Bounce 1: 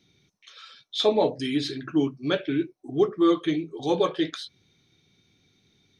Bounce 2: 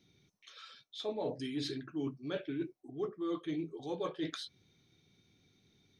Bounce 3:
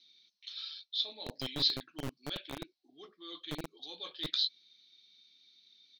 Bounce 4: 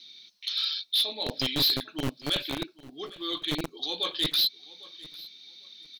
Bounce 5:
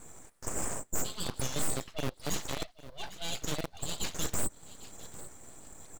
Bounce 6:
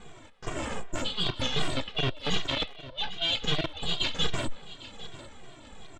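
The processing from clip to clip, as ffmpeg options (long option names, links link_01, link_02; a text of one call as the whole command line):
ffmpeg -i in.wav -af "equalizer=frequency=3200:width_type=o:width=2.9:gain=-3,areverse,acompressor=threshold=-31dB:ratio=6,areverse,volume=-3.5dB" out.wav
ffmpeg -i in.wav -filter_complex "[0:a]firequalizer=gain_entry='entry(190,0);entry(400,-19);entry(1200,-15);entry(4200,11);entry(8300,-28)':delay=0.05:min_phase=1,acrossover=split=380[link_01][link_02];[link_01]acrusher=bits=4:dc=4:mix=0:aa=0.000001[link_03];[link_03][link_02]amix=inputs=2:normalize=0,volume=6dB" out.wav
ffmpeg -i in.wav -filter_complex "[0:a]asplit=2[link_01][link_02];[link_02]alimiter=level_in=4.5dB:limit=-24dB:level=0:latency=1:release=448,volume=-4.5dB,volume=-2dB[link_03];[link_01][link_03]amix=inputs=2:normalize=0,asoftclip=type=hard:threshold=-29.5dB,aecho=1:1:801|1602:0.0944|0.0198,volume=9dB" out.wav
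ffmpeg -i in.wav -filter_complex "[0:a]asplit=2[link_01][link_02];[link_02]acompressor=threshold=-34dB:ratio=6,volume=1dB[link_03];[link_01][link_03]amix=inputs=2:normalize=0,aeval=exprs='abs(val(0))':channel_layout=same,volume=-5.5dB" out.wav
ffmpeg -i in.wav -filter_complex "[0:a]lowpass=frequency=3300:width_type=q:width=3.2,asplit=2[link_01][link_02];[link_02]adelay=180,highpass=300,lowpass=3400,asoftclip=type=hard:threshold=-25dB,volume=-18dB[link_03];[link_01][link_03]amix=inputs=2:normalize=0,asplit=2[link_04][link_05];[link_05]adelay=2,afreqshift=-2.6[link_06];[link_04][link_06]amix=inputs=2:normalize=1,volume=7.5dB" out.wav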